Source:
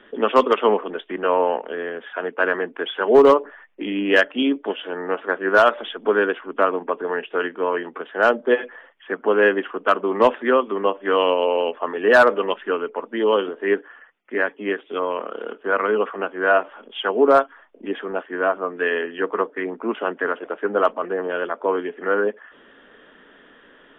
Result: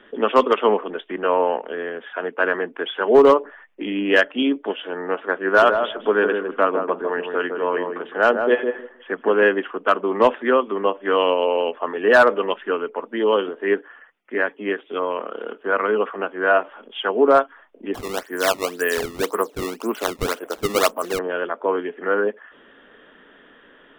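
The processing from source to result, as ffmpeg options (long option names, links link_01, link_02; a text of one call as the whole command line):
ffmpeg -i in.wav -filter_complex "[0:a]asettb=1/sr,asplit=3[link_01][link_02][link_03];[link_01]atrim=end=5.464[link_04];[link_02]atrim=start=5.46:end=9.43,asetpts=PTS-STARTPTS,afade=type=in:duration=0.004:curve=qsin,afade=type=out:start_time=3.966:duration=0.004:curve=qsin,asplit=2[link_05][link_06];[link_06]adelay=158,lowpass=frequency=840:poles=1,volume=-4dB,asplit=2[link_07][link_08];[link_08]adelay=158,lowpass=frequency=840:poles=1,volume=0.2,asplit=2[link_09][link_10];[link_10]adelay=158,lowpass=frequency=840:poles=1,volume=0.2[link_11];[link_05][link_07][link_09][link_11]amix=inputs=4:normalize=0,atrim=end_sample=175077[link_12];[link_03]atrim=start=9.426[link_13];[link_04][link_12]acrossfade=duration=0.004:curve1=hsin:curve2=qsin[link_14];[link_14][link_13]acrossfade=duration=0.004:curve1=qsin:curve2=hsin,asettb=1/sr,asplit=3[link_15][link_16][link_17];[link_15]atrim=end=17.944[link_18];[link_16]atrim=start=17.94:end=21.19,asetpts=PTS-STARTPTS,afade=type=in:duration=0.004:curve=qsin,afade=type=out:start_time=3.246:duration=0.004:curve=qsin,acrusher=samples=16:mix=1:aa=0.000001:lfo=1:lforange=25.6:lforate=1.9[link_19];[link_17]atrim=start=21.186[link_20];[link_18][link_19]acrossfade=duration=0.004:curve1=hsin:curve2=qsin[link_21];[link_21][link_20]acrossfade=duration=0.004:curve1=qsin:curve2=hsin" out.wav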